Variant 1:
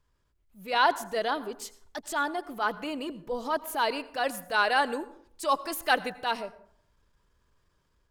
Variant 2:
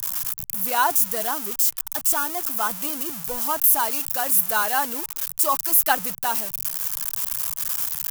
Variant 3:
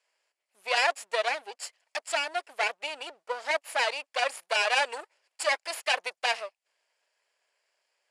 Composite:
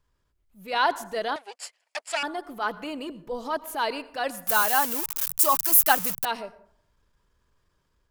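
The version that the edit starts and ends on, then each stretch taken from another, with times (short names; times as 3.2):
1
1.36–2.23 from 3
4.47–6.25 from 2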